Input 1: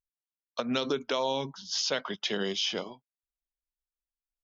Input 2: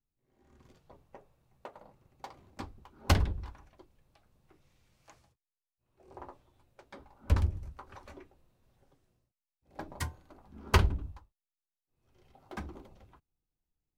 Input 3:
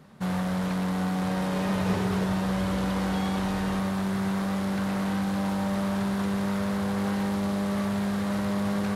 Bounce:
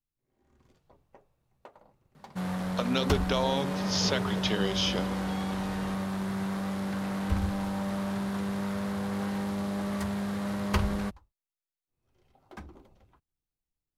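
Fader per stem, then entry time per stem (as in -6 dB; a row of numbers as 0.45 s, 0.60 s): +0.5 dB, -4.0 dB, -4.5 dB; 2.20 s, 0.00 s, 2.15 s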